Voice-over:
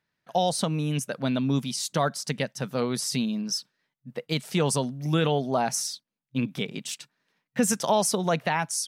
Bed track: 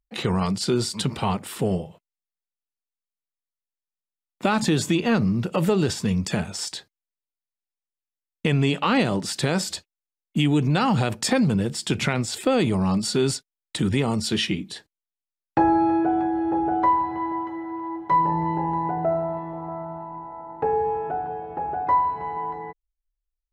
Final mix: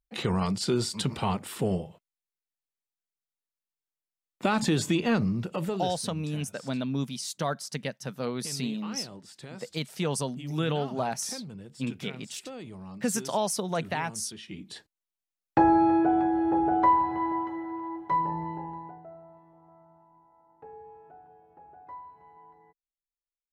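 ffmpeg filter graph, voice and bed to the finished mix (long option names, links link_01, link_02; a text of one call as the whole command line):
ffmpeg -i stem1.wav -i stem2.wav -filter_complex "[0:a]adelay=5450,volume=-5dB[link_01];[1:a]volume=15.5dB,afade=type=out:start_time=5.11:duration=0.97:silence=0.141254,afade=type=in:start_time=14.47:duration=0.53:silence=0.105925,afade=type=out:start_time=17.3:duration=1.74:silence=0.0749894[link_02];[link_01][link_02]amix=inputs=2:normalize=0" out.wav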